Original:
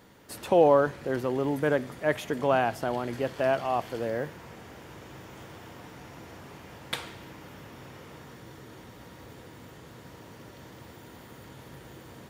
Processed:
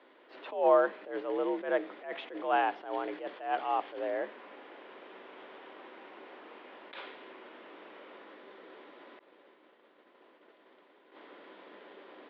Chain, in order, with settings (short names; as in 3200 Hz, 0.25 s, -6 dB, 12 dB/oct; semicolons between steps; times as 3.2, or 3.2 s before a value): mistuned SSB +63 Hz 230–3500 Hz; 9.19–11.12 expander -42 dBFS; attack slew limiter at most 130 dB/s; gain -2.5 dB